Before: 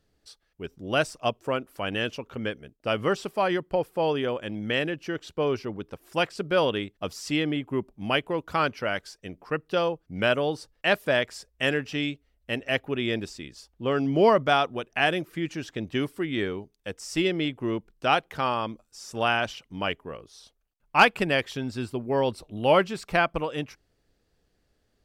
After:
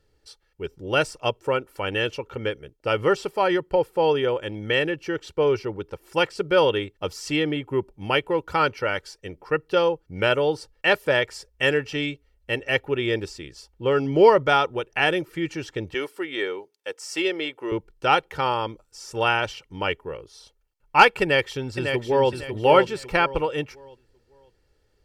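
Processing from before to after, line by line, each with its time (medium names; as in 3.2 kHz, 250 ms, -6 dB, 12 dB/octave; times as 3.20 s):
15.94–17.72 s: high-pass 430 Hz
21.22–22.32 s: echo throw 550 ms, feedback 30%, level -6 dB
whole clip: treble shelf 8.5 kHz -4.5 dB; band-stop 3.7 kHz, Q 22; comb 2.2 ms, depth 59%; trim +2.5 dB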